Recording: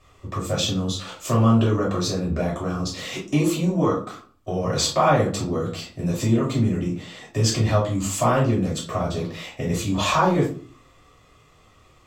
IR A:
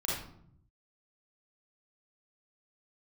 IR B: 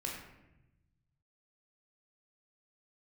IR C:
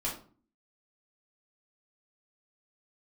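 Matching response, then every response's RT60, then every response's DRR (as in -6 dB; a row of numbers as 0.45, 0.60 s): C; 0.65, 0.95, 0.45 s; -6.0, -2.0, -6.5 dB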